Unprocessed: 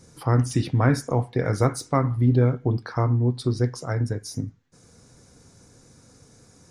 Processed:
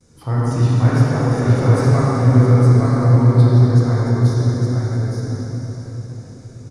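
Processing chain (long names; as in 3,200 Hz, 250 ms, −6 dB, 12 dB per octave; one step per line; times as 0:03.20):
noise gate with hold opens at −45 dBFS
low-shelf EQ 130 Hz +6.5 dB
single-tap delay 864 ms −3.5 dB
convolution reverb RT60 4.8 s, pre-delay 9 ms, DRR −9 dB
level −6 dB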